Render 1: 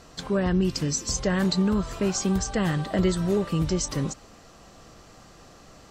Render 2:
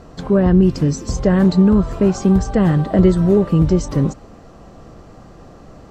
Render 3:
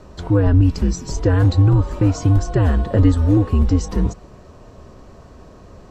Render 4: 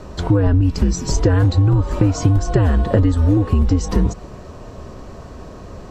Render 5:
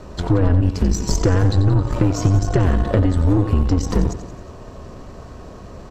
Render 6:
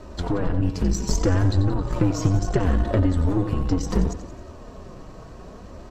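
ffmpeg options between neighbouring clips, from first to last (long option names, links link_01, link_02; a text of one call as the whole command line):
ffmpeg -i in.wav -af "tiltshelf=frequency=1500:gain=8.5,volume=3dB" out.wav
ffmpeg -i in.wav -af "afreqshift=-90,volume=-1dB" out.wav
ffmpeg -i in.wav -af "acompressor=threshold=-18dB:ratio=6,volume=7dB" out.wav
ffmpeg -i in.wav -af "aecho=1:1:89|178|267|356|445|534:0.282|0.161|0.0916|0.0522|0.0298|0.017,aeval=exprs='0.891*(cos(1*acos(clip(val(0)/0.891,-1,1)))-cos(1*PI/2))+0.0631*(cos(8*acos(clip(val(0)/0.891,-1,1)))-cos(8*PI/2))':channel_layout=same,volume=-2dB" out.wav
ffmpeg -i in.wav -af "flanger=delay=3.1:depth=3.3:regen=-37:speed=0.68:shape=sinusoidal" out.wav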